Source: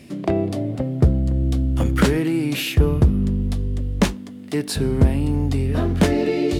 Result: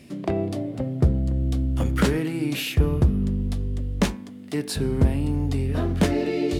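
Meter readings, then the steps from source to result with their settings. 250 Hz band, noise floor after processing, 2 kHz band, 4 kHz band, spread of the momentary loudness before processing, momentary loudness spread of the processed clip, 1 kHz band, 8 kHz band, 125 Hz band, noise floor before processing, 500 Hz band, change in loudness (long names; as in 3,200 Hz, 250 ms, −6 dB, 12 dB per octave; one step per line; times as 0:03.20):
−4.0 dB, −39 dBFS, −3.5 dB, −3.5 dB, 7 LU, 7 LU, −4.0 dB, −3.5 dB, −3.5 dB, −35 dBFS, −4.0 dB, −4.0 dB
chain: hum removal 109.1 Hz, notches 23
level −3.5 dB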